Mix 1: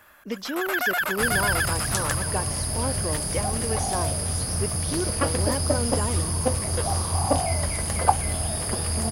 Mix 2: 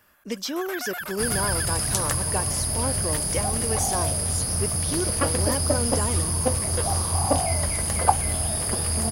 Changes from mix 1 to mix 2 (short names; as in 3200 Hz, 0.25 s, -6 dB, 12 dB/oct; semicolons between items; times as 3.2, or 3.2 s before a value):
speech: remove air absorption 97 m; first sound -9.0 dB; master: add high shelf 11000 Hz +7.5 dB